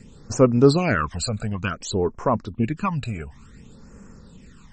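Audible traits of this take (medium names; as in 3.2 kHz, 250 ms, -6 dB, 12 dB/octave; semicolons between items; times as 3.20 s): phasing stages 12, 0.56 Hz, lowest notch 310–3700 Hz; MP3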